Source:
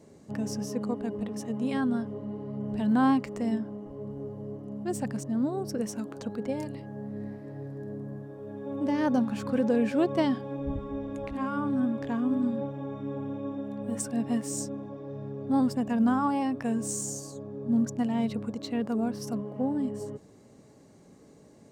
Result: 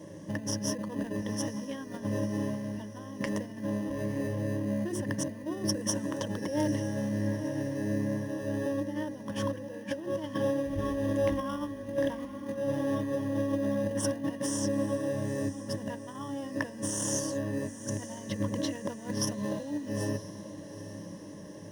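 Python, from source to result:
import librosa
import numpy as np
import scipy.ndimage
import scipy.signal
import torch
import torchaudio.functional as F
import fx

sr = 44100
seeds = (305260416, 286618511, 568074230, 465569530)

p1 = fx.sample_hold(x, sr, seeds[0], rate_hz=2200.0, jitter_pct=0)
p2 = x + F.gain(torch.from_numpy(p1), -9.5).numpy()
p3 = scipy.signal.sosfilt(scipy.signal.butter(2, 69.0, 'highpass', fs=sr, output='sos'), p2)
p4 = fx.hum_notches(p3, sr, base_hz=60, count=7)
p5 = fx.over_compress(p4, sr, threshold_db=-35.0, ratio=-1.0)
p6 = fx.ripple_eq(p5, sr, per_octave=1.2, db=14)
y = p6 + fx.echo_diffused(p6, sr, ms=901, feedback_pct=48, wet_db=-13, dry=0)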